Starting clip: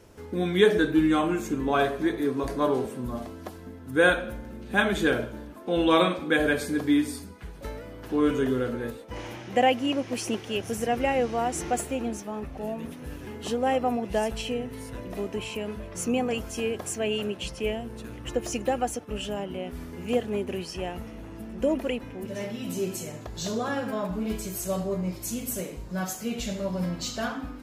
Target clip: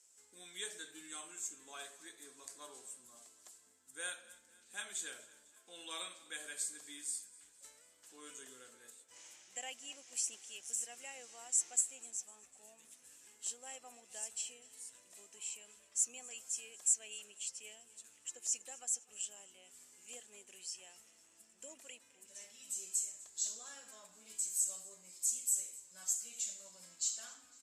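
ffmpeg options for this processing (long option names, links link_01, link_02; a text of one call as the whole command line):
ffmpeg -i in.wav -af "bandpass=frequency=7700:width_type=q:width=6.4:csg=0,aecho=1:1:250|500|750|1000:0.0891|0.0481|0.026|0.014,volume=8dB" out.wav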